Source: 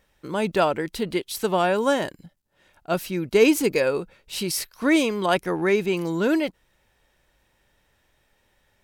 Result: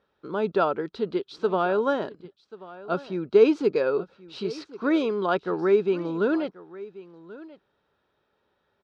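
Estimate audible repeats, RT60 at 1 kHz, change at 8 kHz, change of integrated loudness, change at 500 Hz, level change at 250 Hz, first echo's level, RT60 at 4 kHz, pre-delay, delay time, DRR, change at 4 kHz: 1, no reverb audible, below −20 dB, −2.0 dB, 0.0 dB, −3.0 dB, −18.5 dB, no reverb audible, no reverb audible, 1,085 ms, no reverb audible, −10.0 dB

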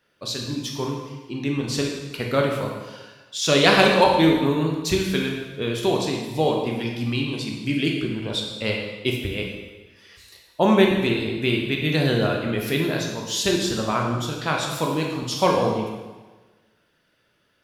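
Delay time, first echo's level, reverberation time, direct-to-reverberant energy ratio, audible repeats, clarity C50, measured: no echo audible, no echo audible, 1.3 s, 0.0 dB, no echo audible, 2.5 dB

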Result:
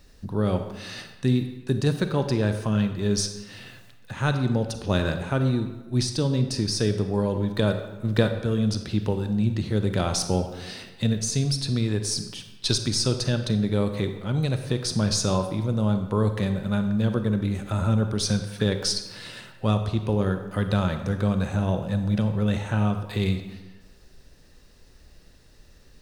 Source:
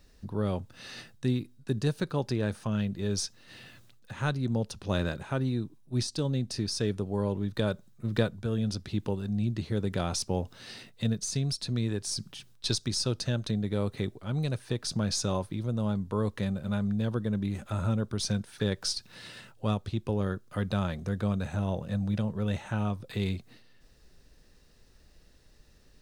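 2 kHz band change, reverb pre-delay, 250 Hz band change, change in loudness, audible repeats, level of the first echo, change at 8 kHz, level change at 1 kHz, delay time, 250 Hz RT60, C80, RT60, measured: +6.0 dB, 33 ms, +6.0 dB, +6.0 dB, no echo audible, no echo audible, +6.0 dB, +6.5 dB, no echo audible, 1.1 s, 10.0 dB, 1.2 s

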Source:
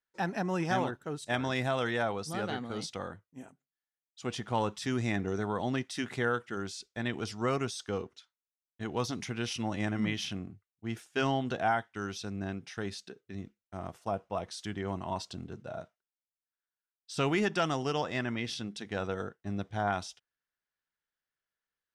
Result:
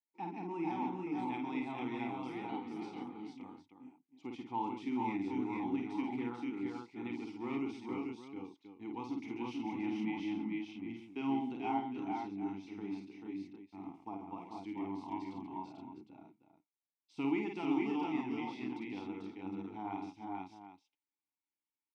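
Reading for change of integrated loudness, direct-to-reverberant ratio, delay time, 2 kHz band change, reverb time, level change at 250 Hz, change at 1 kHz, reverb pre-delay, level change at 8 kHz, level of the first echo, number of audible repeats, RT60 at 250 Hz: −6.0 dB, no reverb audible, 51 ms, −12.0 dB, no reverb audible, −1.0 dB, −5.5 dB, no reverb audible, below −20 dB, −4.5 dB, 5, no reverb audible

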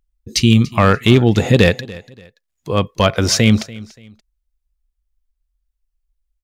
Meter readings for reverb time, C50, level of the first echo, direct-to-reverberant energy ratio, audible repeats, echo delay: no reverb audible, no reverb audible, −20.0 dB, no reverb audible, 2, 288 ms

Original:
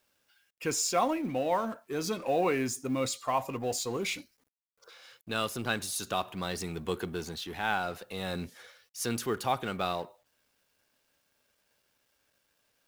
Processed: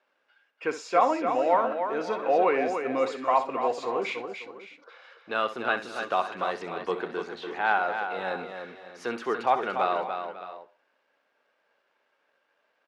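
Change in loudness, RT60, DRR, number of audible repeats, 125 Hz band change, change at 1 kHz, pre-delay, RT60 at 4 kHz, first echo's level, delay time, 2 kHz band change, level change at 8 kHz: +4.5 dB, no reverb audible, no reverb audible, 4, −11.0 dB, +7.5 dB, no reverb audible, no reverb audible, −12.5 dB, 64 ms, +5.5 dB, below −15 dB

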